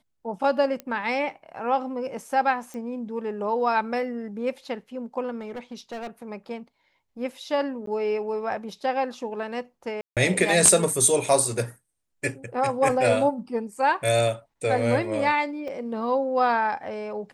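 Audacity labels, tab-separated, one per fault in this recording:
0.800000	0.800000	pop -19 dBFS
2.740000	2.740000	pop
5.390000	6.230000	clipped -31 dBFS
7.860000	7.870000	gap 13 ms
10.010000	10.170000	gap 0.157 s
15.680000	15.680000	gap 3.5 ms

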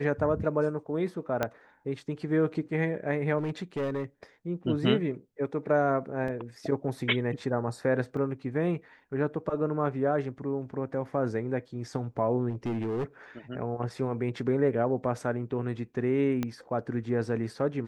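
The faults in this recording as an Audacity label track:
1.430000	1.430000	pop -13 dBFS
3.380000	4.040000	clipped -27 dBFS
6.280000	6.280000	gap 3 ms
8.170000	8.170000	gap 2.1 ms
12.490000	13.040000	clipped -27 dBFS
16.430000	16.430000	pop -17 dBFS

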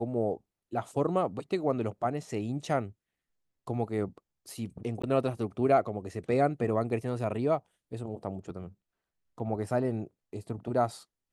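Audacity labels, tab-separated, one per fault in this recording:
5.020000	5.040000	gap 15 ms

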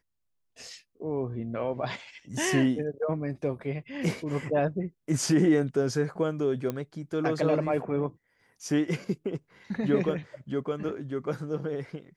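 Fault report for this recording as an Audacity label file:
6.700000	6.700000	pop -18 dBFS

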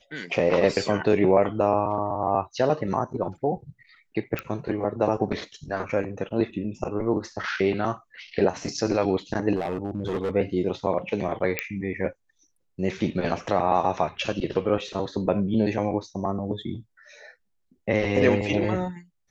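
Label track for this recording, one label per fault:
4.390000	4.390000	pop -15 dBFS
9.550000	10.310000	clipped -23 dBFS
11.590000	11.590000	pop -9 dBFS

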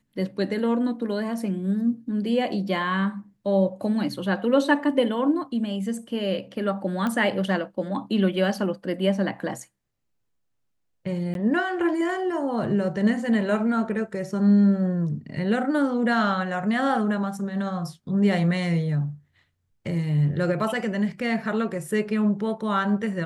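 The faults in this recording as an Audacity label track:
7.070000	7.070000	pop -15 dBFS
11.340000	11.350000	gap 12 ms

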